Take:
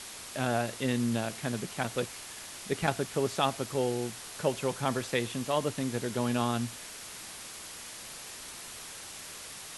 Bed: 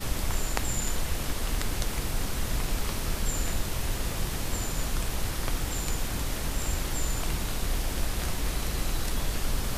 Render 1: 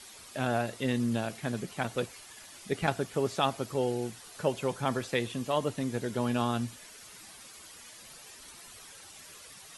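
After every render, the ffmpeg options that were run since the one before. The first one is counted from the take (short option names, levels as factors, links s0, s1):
-af "afftdn=nr=10:nf=-45"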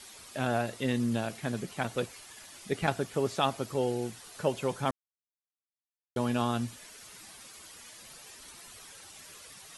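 -filter_complex "[0:a]asplit=3[s0][s1][s2];[s0]atrim=end=4.91,asetpts=PTS-STARTPTS,afade=t=out:st=4.906:d=0.004:c=hsin[s3];[s1]atrim=start=4.91:end=6.16,asetpts=PTS-STARTPTS,volume=0[s4];[s2]atrim=start=6.16,asetpts=PTS-STARTPTS,afade=t=in:d=0.004:c=hsin[s5];[s3][s4][s5]concat=n=3:v=0:a=1"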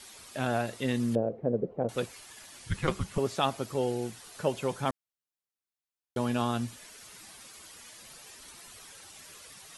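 -filter_complex "[0:a]asettb=1/sr,asplit=3[s0][s1][s2];[s0]atrim=end=1.154[s3];[s1]atrim=start=1.15:end=1.89,asetpts=PTS-STARTPTS,afade=t=in:d=0.004:c=qsin,afade=t=out:st=0.736:d=0.004:c=qsin,lowpass=f=500:t=q:w=5.1[s4];[s2]atrim=start=1.886[s5];[s3][s4]acrossfade=d=0.004:c1=hsin:c2=qsin[s6];[s6][s5]acrossfade=d=0.004:c1=qsin:c2=hsin,asettb=1/sr,asplit=3[s7][s8][s9];[s7]atrim=end=2.594[s10];[s8]atrim=start=2.59:end=3.18,asetpts=PTS-STARTPTS,afade=t=in:d=0.004:c=qsin,afade=t=out:st=0.586:d=0.004:c=qsin,afreqshift=-310[s11];[s9]atrim=start=3.176[s12];[s10][s11]acrossfade=d=0.004:c1=hsin:c2=qsin[s13];[s13][s12]acrossfade=d=0.004:c1=qsin:c2=hsin"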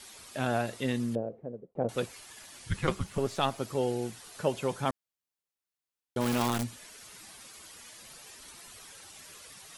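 -filter_complex "[0:a]asettb=1/sr,asplit=3[s0][s1][s2];[s0]atrim=end=2.954[s3];[s1]atrim=start=2.95:end=3.6,asetpts=PTS-STARTPTS,afade=t=in:d=0.004:c=qsin,afade=t=out:st=0.646:d=0.004:c=qsin,aeval=exprs='if(lt(val(0),0),0.708*val(0),val(0))':c=same[s4];[s2]atrim=start=3.596[s5];[s3][s4]acrossfade=d=0.004:c1=hsin:c2=qsin[s6];[s6][s5]acrossfade=d=0.004:c1=qsin:c2=hsin,asplit=3[s7][s8][s9];[s7]afade=t=out:st=6.2:d=0.02[s10];[s8]acrusher=bits=6:dc=4:mix=0:aa=0.000001,afade=t=in:st=6.2:d=0.02,afade=t=out:st=6.62:d=0.02[s11];[s9]afade=t=in:st=6.62:d=0.02[s12];[s10][s11][s12]amix=inputs=3:normalize=0,asplit=2[s13][s14];[s13]atrim=end=1.75,asetpts=PTS-STARTPTS,afade=t=out:st=0.8:d=0.95[s15];[s14]atrim=start=1.75,asetpts=PTS-STARTPTS,afade=t=in:d=0.004:c=hsin[s16];[s15][s16]concat=n=2:v=0:a=1"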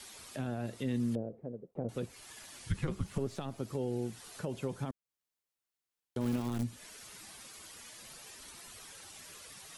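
-filter_complex "[0:a]alimiter=limit=0.0891:level=0:latency=1:release=51,acrossover=split=390[s0][s1];[s1]acompressor=threshold=0.00447:ratio=3[s2];[s0][s2]amix=inputs=2:normalize=0"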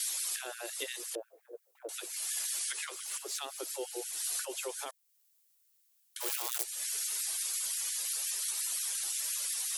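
-af "crystalizer=i=6.5:c=0,afftfilt=real='re*gte(b*sr/1024,290*pow(1500/290,0.5+0.5*sin(2*PI*5.7*pts/sr)))':imag='im*gte(b*sr/1024,290*pow(1500/290,0.5+0.5*sin(2*PI*5.7*pts/sr)))':win_size=1024:overlap=0.75"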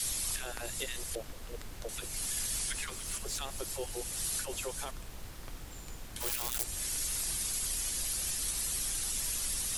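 -filter_complex "[1:a]volume=0.168[s0];[0:a][s0]amix=inputs=2:normalize=0"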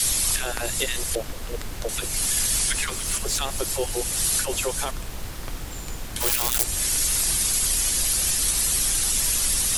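-af "volume=3.98"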